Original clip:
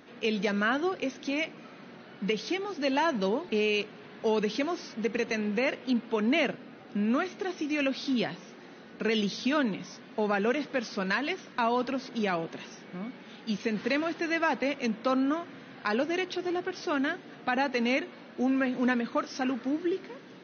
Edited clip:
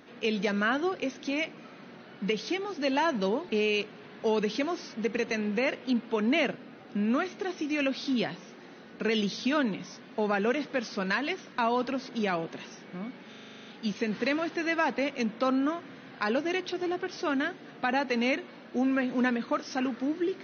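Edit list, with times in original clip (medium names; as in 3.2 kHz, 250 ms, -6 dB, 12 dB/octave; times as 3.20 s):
13.29 s: stutter 0.04 s, 10 plays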